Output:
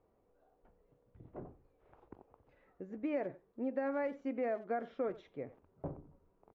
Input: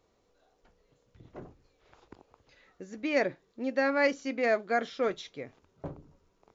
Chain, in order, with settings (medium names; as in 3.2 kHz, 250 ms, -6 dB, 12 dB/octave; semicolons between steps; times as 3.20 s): FFT filter 790 Hz 0 dB, 2.7 kHz -13 dB, 4.8 kHz -27 dB; compression 10:1, threshold -30 dBFS, peak gain reduction 9.5 dB; speakerphone echo 90 ms, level -17 dB; trim -2 dB